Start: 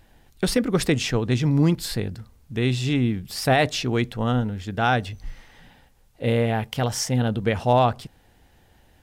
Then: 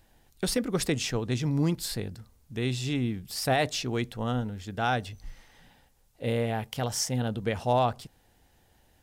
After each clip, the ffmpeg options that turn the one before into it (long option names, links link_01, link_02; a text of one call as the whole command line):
ffmpeg -i in.wav -filter_complex "[0:a]bass=frequency=250:gain=0,treble=frequency=4000:gain=6,acrossover=split=940[link_01][link_02];[link_01]crystalizer=i=8.5:c=0[link_03];[link_03][link_02]amix=inputs=2:normalize=0,volume=-7.5dB" out.wav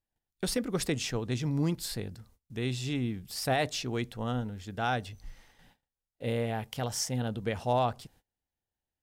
ffmpeg -i in.wav -af "agate=range=-26dB:threshold=-56dB:ratio=16:detection=peak,volume=-3dB" out.wav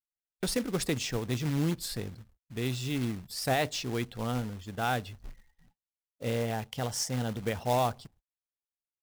ffmpeg -i in.wav -af "afftdn=noise_reduction=25:noise_floor=-53,acrusher=bits=3:mode=log:mix=0:aa=0.000001" out.wav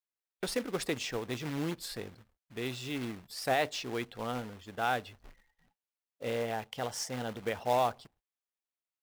ffmpeg -i in.wav -af "bass=frequency=250:gain=-11,treble=frequency=4000:gain=-6" out.wav